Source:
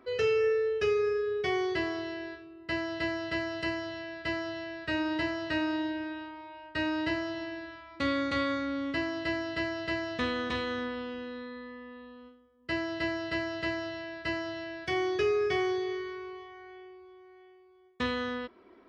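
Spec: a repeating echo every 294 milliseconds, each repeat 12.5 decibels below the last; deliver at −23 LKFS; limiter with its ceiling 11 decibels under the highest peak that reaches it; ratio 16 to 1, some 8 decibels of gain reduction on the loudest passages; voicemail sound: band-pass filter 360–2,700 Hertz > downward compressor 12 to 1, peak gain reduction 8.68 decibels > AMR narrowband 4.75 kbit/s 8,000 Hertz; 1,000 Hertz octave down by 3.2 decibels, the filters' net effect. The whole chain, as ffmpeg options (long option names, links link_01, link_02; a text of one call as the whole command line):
ffmpeg -i in.wav -af "equalizer=frequency=1000:width_type=o:gain=-4,acompressor=threshold=-32dB:ratio=16,alimiter=level_in=9dB:limit=-24dB:level=0:latency=1,volume=-9dB,highpass=360,lowpass=2700,aecho=1:1:294|588|882:0.237|0.0569|0.0137,acompressor=threshold=-44dB:ratio=12,volume=26dB" -ar 8000 -c:a libopencore_amrnb -b:a 4750 out.amr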